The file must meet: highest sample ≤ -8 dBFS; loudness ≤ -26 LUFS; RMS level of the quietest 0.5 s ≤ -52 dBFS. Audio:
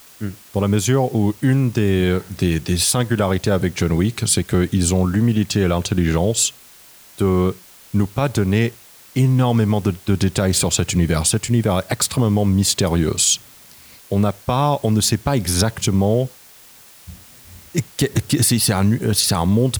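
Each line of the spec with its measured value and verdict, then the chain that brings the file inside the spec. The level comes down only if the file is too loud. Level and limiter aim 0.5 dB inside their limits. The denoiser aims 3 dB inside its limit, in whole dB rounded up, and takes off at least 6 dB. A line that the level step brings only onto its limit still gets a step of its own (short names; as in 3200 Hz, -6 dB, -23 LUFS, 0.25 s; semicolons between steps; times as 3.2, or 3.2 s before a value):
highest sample -5.5 dBFS: fail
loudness -18.5 LUFS: fail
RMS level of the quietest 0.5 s -45 dBFS: fail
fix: gain -8 dB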